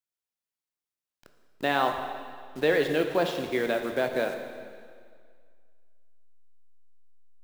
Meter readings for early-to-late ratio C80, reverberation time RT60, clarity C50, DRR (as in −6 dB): 7.5 dB, 2.0 s, 6.5 dB, 5.0 dB